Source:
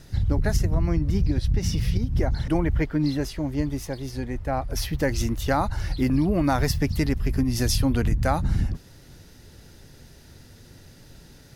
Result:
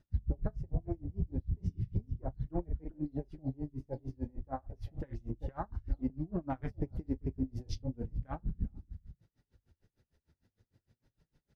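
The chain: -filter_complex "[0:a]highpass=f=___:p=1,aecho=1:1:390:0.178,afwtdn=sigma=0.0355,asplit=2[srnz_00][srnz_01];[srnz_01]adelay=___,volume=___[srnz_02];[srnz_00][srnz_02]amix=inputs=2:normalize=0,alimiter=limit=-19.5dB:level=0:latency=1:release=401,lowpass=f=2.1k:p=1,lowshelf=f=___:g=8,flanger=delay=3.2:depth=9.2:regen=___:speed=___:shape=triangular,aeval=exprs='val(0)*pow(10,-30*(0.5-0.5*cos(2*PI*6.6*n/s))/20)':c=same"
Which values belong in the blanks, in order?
47, 38, -11dB, 63, -34, 0.34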